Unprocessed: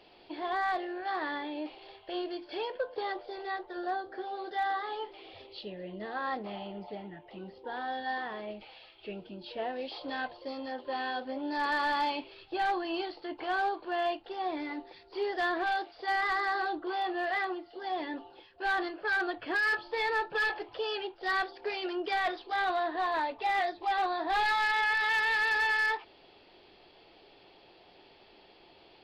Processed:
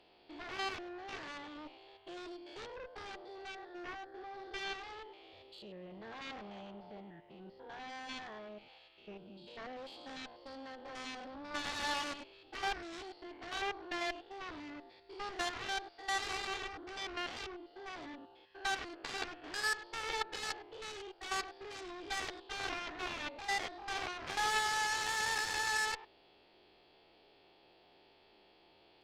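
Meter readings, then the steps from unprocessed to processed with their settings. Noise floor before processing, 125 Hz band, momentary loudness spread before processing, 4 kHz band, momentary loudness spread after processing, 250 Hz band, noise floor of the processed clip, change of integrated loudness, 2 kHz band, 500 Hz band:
-59 dBFS, n/a, 16 LU, -1.5 dB, 18 LU, -10.0 dB, -66 dBFS, -7.5 dB, -8.5 dB, -10.5 dB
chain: stepped spectrum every 0.1 s; added harmonics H 3 -8 dB, 6 -30 dB, 7 -31 dB, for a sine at -21.5 dBFS; gain +2.5 dB

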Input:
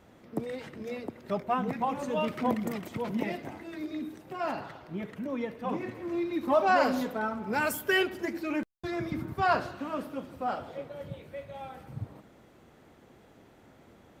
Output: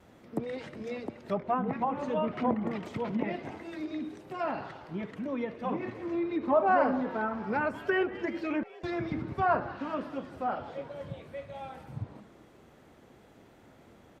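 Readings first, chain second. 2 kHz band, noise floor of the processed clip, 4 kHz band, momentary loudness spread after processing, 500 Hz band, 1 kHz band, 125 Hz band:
-3.0 dB, -57 dBFS, -8.5 dB, 13 LU, 0.0 dB, -0.5 dB, 0.0 dB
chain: vibrato 0.61 Hz 13 cents; frequency-shifting echo 0.19 s, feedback 58%, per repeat +100 Hz, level -20 dB; treble ducked by the level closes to 1500 Hz, closed at -25 dBFS

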